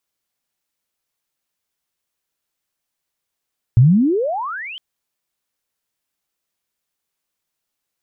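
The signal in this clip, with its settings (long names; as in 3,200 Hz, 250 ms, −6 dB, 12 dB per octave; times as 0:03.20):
glide logarithmic 110 Hz → 3,200 Hz −5.5 dBFS → −29.5 dBFS 1.01 s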